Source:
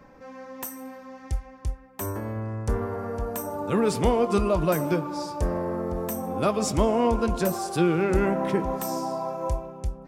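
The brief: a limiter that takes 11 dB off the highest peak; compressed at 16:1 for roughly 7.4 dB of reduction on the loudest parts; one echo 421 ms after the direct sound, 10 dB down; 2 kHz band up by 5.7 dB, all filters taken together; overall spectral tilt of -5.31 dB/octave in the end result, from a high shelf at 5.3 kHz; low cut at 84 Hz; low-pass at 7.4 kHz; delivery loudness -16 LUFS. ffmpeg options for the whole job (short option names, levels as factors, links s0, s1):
-af "highpass=84,lowpass=7400,equalizer=f=2000:t=o:g=7,highshelf=f=5300:g=5.5,acompressor=threshold=0.0631:ratio=16,alimiter=level_in=1.12:limit=0.0631:level=0:latency=1,volume=0.891,aecho=1:1:421:0.316,volume=7.94"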